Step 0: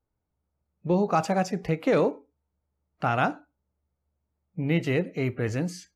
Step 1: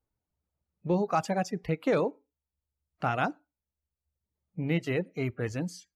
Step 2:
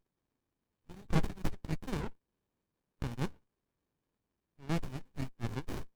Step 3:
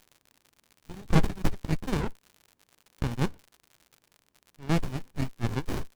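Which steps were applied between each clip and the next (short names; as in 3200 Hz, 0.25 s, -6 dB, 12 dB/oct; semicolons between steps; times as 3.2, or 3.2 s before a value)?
reverb removal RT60 0.94 s; gain -3 dB
RIAA curve recording; LFO high-pass sine 2.3 Hz 920–5600 Hz; running maximum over 65 samples
crackle 100/s -49 dBFS; gain +8 dB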